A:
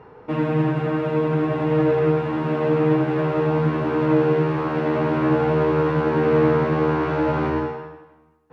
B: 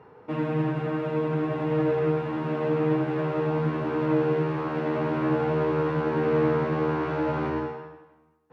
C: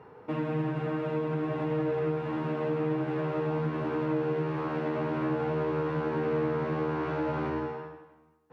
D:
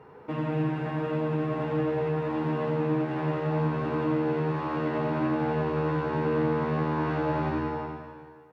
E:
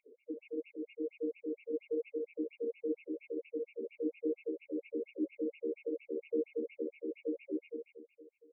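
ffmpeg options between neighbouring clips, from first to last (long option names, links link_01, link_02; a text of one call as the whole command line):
ffmpeg -i in.wav -af "highpass=78,volume=-5.5dB" out.wav
ffmpeg -i in.wav -af "acompressor=threshold=-30dB:ratio=2" out.wav
ffmpeg -i in.wav -filter_complex "[0:a]asplit=2[link_01][link_02];[link_02]adelay=14,volume=-11.5dB[link_03];[link_01][link_03]amix=inputs=2:normalize=0,asplit=2[link_04][link_05];[link_05]aecho=0:1:90|202.5|343.1|518.9|738.6:0.631|0.398|0.251|0.158|0.1[link_06];[link_04][link_06]amix=inputs=2:normalize=0" out.wav
ffmpeg -i in.wav -af "afftfilt=real='re*(1-between(b*sr/4096,590,2100))':imag='im*(1-between(b*sr/4096,590,2100))':win_size=4096:overlap=0.75,afftfilt=real='re*between(b*sr/1024,330*pow(2100/330,0.5+0.5*sin(2*PI*4.3*pts/sr))/1.41,330*pow(2100/330,0.5+0.5*sin(2*PI*4.3*pts/sr))*1.41)':imag='im*between(b*sr/1024,330*pow(2100/330,0.5+0.5*sin(2*PI*4.3*pts/sr))/1.41,330*pow(2100/330,0.5+0.5*sin(2*PI*4.3*pts/sr))*1.41)':win_size=1024:overlap=0.75,volume=-3dB" out.wav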